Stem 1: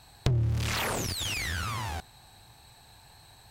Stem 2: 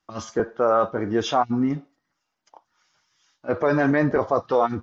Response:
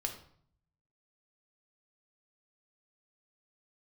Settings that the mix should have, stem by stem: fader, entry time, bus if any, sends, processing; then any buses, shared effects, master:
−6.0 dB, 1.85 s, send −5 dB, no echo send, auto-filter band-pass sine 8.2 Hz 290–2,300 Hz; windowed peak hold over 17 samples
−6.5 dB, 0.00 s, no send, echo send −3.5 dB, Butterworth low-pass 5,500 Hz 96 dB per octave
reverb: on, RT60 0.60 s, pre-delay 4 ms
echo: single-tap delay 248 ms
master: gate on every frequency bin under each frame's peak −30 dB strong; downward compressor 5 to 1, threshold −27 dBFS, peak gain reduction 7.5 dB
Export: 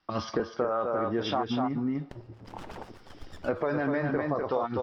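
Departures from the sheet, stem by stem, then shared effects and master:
stem 2 −6.5 dB → +5.0 dB
master: missing gate on every frequency bin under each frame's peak −30 dB strong

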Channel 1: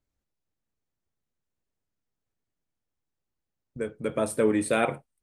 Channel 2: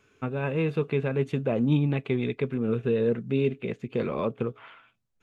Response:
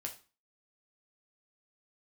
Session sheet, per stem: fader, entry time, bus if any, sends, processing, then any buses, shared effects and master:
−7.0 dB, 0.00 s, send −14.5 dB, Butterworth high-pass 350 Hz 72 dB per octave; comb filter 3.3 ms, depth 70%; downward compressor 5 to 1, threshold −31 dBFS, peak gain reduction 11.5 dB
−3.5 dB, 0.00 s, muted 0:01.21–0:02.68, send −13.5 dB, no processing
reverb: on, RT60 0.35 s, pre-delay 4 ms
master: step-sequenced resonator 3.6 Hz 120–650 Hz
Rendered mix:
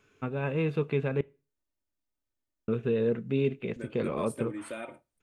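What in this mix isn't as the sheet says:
stem 1: missing Butterworth high-pass 350 Hz 72 dB per octave
master: missing step-sequenced resonator 3.6 Hz 120–650 Hz

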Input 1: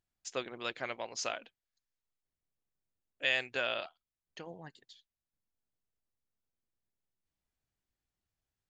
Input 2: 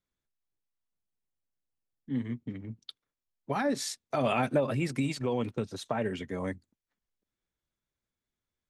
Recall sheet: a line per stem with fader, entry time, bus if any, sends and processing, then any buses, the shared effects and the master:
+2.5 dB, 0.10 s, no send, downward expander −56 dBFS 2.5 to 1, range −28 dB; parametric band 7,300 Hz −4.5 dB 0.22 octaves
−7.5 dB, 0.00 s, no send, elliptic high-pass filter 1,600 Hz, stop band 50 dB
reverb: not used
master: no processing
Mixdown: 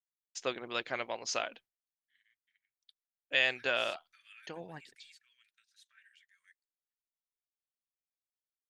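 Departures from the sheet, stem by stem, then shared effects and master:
stem 2 −7.5 dB → −19.0 dB
master: extra low-shelf EQ 160 Hz −4 dB

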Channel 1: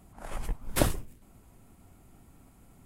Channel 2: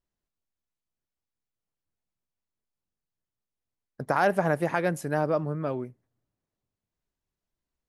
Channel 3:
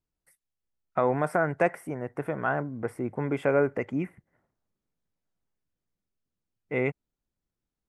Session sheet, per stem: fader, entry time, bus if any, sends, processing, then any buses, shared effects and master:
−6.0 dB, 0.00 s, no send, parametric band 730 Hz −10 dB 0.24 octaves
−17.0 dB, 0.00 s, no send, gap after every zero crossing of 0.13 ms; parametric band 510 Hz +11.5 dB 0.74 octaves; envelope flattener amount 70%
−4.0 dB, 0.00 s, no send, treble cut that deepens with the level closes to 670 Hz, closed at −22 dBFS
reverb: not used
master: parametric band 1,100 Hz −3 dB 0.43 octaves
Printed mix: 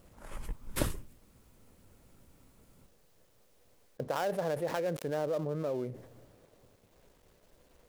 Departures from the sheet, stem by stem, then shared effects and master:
stem 3: muted
master: missing parametric band 1,100 Hz −3 dB 0.43 octaves

